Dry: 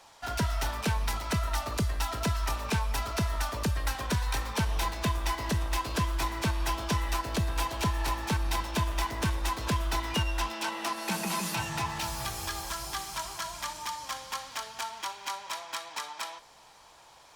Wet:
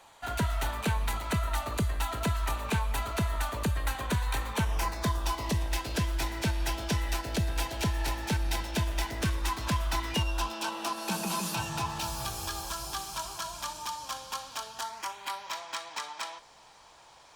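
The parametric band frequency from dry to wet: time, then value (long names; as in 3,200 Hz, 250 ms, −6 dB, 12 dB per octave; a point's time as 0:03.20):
parametric band −12.5 dB 0.28 octaves
0:04.56 5,300 Hz
0:05.74 1,100 Hz
0:09.16 1,100 Hz
0:09.87 310 Hz
0:10.26 2,000 Hz
0:14.74 2,000 Hz
0:15.63 12,000 Hz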